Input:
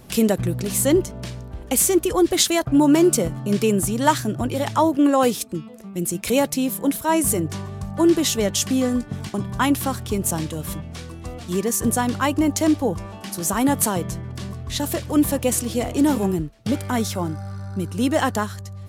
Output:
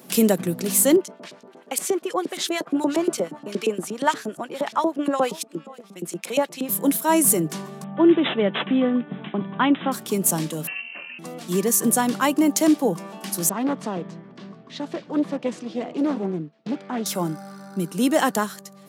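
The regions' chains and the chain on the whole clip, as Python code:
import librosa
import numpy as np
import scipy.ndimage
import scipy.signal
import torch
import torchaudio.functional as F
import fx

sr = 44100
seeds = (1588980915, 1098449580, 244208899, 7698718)

y = fx.chain(x, sr, fx.echo_single(ms=518, db=-22.5),
    fx.filter_lfo_bandpass(shape='saw_up', hz=8.5, low_hz=370.0, high_hz=5100.0, q=0.82), at=(0.96, 6.69))
y = fx.chain(y, sr, fx.air_absorb(metres=67.0),
    fx.resample_bad(factor=6, down='none', up='filtered'), at=(7.84, 9.92))
y = fx.chain(y, sr, fx.highpass(hz=120.0, slope=24),
    fx.notch(hz=1500.0, q=27.0),
    fx.freq_invert(carrier_hz=2900), at=(10.67, 11.19))
y = fx.chain(y, sr, fx.ladder_lowpass(hz=6200.0, resonance_pct=20),
    fx.high_shelf(hz=3200.0, db=-10.5),
    fx.doppler_dist(depth_ms=0.41), at=(13.49, 17.06))
y = scipy.signal.sosfilt(scipy.signal.ellip(4, 1.0, 40, 160.0, 'highpass', fs=sr, output='sos'), y)
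y = fx.high_shelf(y, sr, hz=11000.0, db=9.0)
y = y * librosa.db_to_amplitude(1.0)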